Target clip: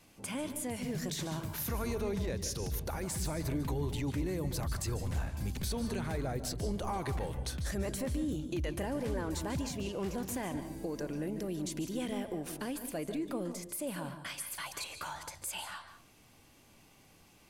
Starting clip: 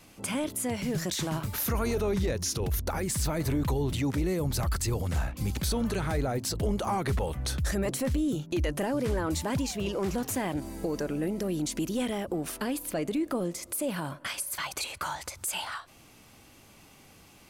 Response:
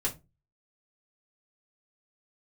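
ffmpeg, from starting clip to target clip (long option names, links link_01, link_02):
-filter_complex "[0:a]bandreject=frequency=1300:width=17,asplit=2[link_01][link_02];[1:a]atrim=start_sample=2205,asetrate=25578,aresample=44100,adelay=142[link_03];[link_02][link_03]afir=irnorm=-1:irlink=0,volume=-18.5dB[link_04];[link_01][link_04]amix=inputs=2:normalize=0,volume=-7dB"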